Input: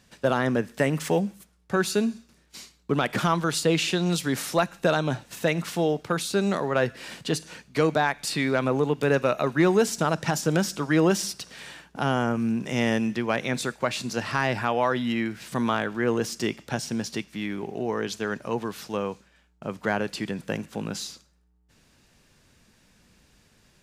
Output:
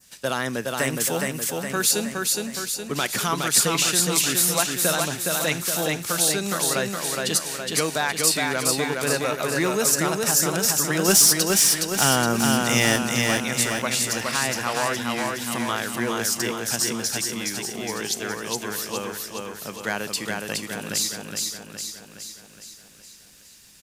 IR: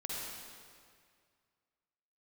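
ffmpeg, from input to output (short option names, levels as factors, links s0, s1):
-filter_complex "[0:a]adynamicequalizer=threshold=0.00562:dfrequency=3400:dqfactor=1:tfrequency=3400:tqfactor=1:attack=5:release=100:ratio=0.375:range=2.5:mode=cutabove:tftype=bell,crystalizer=i=8:c=0,asettb=1/sr,asplit=3[s0][s1][s2];[s0]atrim=end=11.084[s3];[s1]atrim=start=11.08:end=12.96,asetpts=PTS-STARTPTS,afade=t=in:d=0.004:c=qsin,afade=t=out:st=1.876:d=0.004:c=qsin,acontrast=85[s4];[s2]atrim=start=12.956[s5];[s3][s4]acrossfade=d=0.004:c1=hsin:c2=qsin[s6];[s6][s5]acrossfade=d=0.004:c1=qsin:c2=hsin,asplit=2[s7][s8];[s8]aecho=0:1:416|832|1248|1664|2080|2496|2912|3328:0.708|0.389|0.214|0.118|0.0648|0.0356|0.0196|0.0108[s9];[s7][s9]amix=inputs=2:normalize=0,volume=0.531"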